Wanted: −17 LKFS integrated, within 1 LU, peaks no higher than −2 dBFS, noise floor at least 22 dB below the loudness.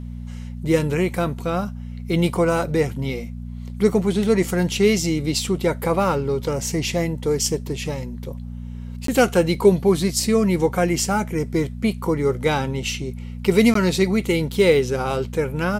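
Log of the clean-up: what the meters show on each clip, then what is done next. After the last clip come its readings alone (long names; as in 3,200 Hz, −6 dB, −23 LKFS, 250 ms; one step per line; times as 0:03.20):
number of dropouts 2; longest dropout 13 ms; mains hum 60 Hz; hum harmonics up to 240 Hz; level of the hum −29 dBFS; integrated loudness −21.0 LKFS; sample peak −3.5 dBFS; target loudness −17.0 LKFS
→ repair the gap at 0:09.07/0:13.74, 13 ms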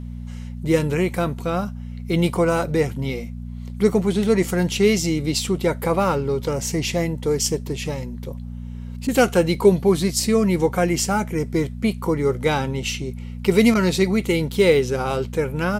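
number of dropouts 0; mains hum 60 Hz; hum harmonics up to 240 Hz; level of the hum −29 dBFS
→ hum removal 60 Hz, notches 4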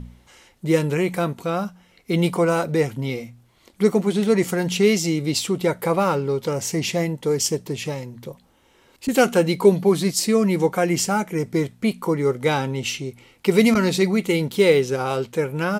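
mains hum none found; integrated loudness −21.0 LKFS; sample peak −3.0 dBFS; target loudness −17.0 LKFS
→ level +4 dB
brickwall limiter −2 dBFS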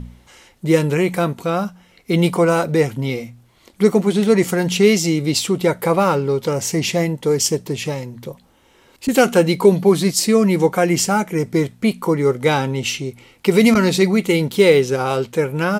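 integrated loudness −17.5 LKFS; sample peak −2.0 dBFS; background noise floor −54 dBFS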